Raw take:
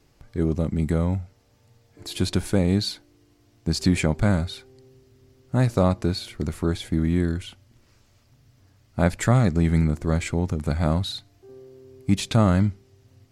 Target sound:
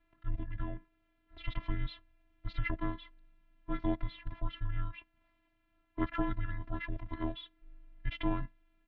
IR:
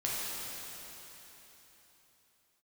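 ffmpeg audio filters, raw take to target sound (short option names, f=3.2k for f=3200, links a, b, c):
-af "afftfilt=real='hypot(re,im)*cos(PI*b)':imag='0':win_size=512:overlap=0.75,atempo=1.5,highpass=f=150:t=q:w=0.5412,highpass=f=150:t=q:w=1.307,lowpass=f=3.3k:t=q:w=0.5176,lowpass=f=3.3k:t=q:w=0.7071,lowpass=f=3.3k:t=q:w=1.932,afreqshift=-370,volume=-4dB"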